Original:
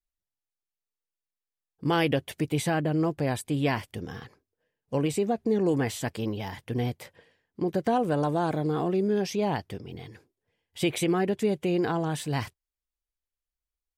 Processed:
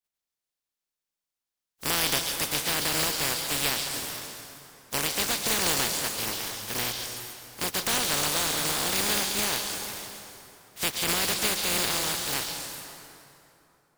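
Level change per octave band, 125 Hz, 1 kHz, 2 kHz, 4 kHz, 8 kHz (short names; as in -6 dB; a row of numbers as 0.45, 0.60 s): -10.5, -1.5, +6.0, +13.0, +15.5 dB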